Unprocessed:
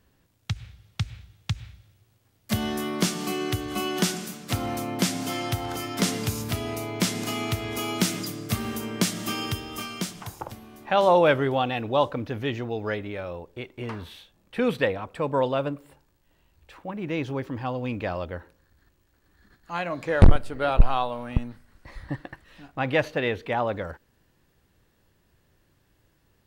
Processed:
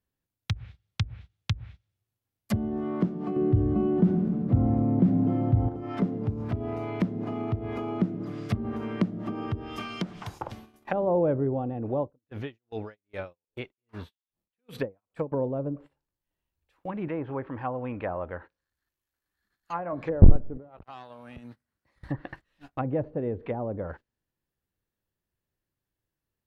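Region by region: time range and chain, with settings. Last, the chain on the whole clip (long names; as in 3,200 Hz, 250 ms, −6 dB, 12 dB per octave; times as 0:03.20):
0:03.36–0:05.69: bass and treble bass +7 dB, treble −3 dB + mains-hum notches 50/100/150/200/250/300/350/400 Hz + envelope flattener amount 50%
0:12.00–0:15.32: high-shelf EQ 9,900 Hz +4 dB + tremolo with a sine in dB 2.5 Hz, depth 38 dB
0:17.08–0:19.93: treble cut that deepens with the level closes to 1,500 Hz, closed at −30.5 dBFS + tilt shelving filter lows −5.5 dB, about 680 Hz
0:20.57–0:22.01: tube saturation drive 18 dB, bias 0.55 + high-pass filter 82 Hz + downward compressor 16 to 1, threshold −38 dBFS
whole clip: treble cut that deepens with the level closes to 430 Hz, closed at −24 dBFS; noise gate −44 dBFS, range −22 dB; parametric band 12,000 Hz +10 dB 0.36 octaves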